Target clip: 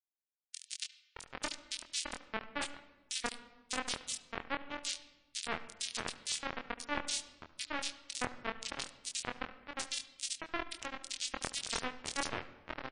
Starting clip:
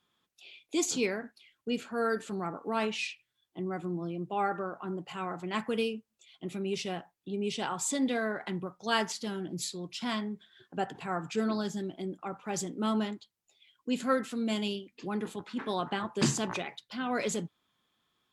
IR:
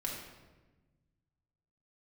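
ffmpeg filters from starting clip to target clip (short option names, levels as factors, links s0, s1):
-filter_complex "[0:a]acrossover=split=6400[s0][s1];[s1]acompressor=threshold=0.00562:ratio=4:attack=1:release=60[s2];[s0][s2]amix=inputs=2:normalize=0,lowshelf=f=430:g=-5.5,areverse,acompressor=threshold=0.00708:ratio=6,areverse,asetrate=56889,aresample=44100,acrusher=bits=3:dc=4:mix=0:aa=0.000001,atempo=1.1,asplit=2[s3][s4];[s4]adelay=24,volume=0.562[s5];[s3][s5]amix=inputs=2:normalize=0,acrossover=split=2700[s6][s7];[s6]adelay=620[s8];[s8][s7]amix=inputs=2:normalize=0,asplit=2[s9][s10];[1:a]atrim=start_sample=2205,lowpass=4400,adelay=72[s11];[s10][s11]afir=irnorm=-1:irlink=0,volume=0.178[s12];[s9][s12]amix=inputs=2:normalize=0,volume=4.73" -ar 22050 -c:a libmp3lame -b:a 40k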